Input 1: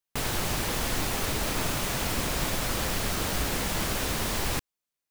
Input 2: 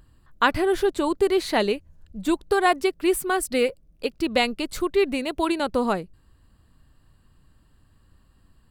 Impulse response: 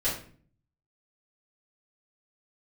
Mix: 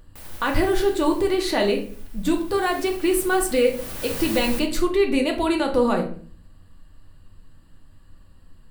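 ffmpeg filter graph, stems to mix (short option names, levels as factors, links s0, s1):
-filter_complex "[0:a]alimiter=limit=0.075:level=0:latency=1:release=498,aexciter=amount=1.9:drive=6.4:freq=9000,volume=2.24,afade=t=out:st=0.67:d=0.74:silence=0.316228,afade=t=in:st=2.26:d=0.55:silence=0.316228,afade=t=in:st=3.72:d=0.34:silence=0.298538,asplit=2[s0][s1];[s1]volume=0.299[s2];[1:a]alimiter=limit=0.15:level=0:latency=1:release=68,volume=1,asplit=2[s3][s4];[s4]volume=0.422[s5];[2:a]atrim=start_sample=2205[s6];[s2][s5]amix=inputs=2:normalize=0[s7];[s7][s6]afir=irnorm=-1:irlink=0[s8];[s0][s3][s8]amix=inputs=3:normalize=0"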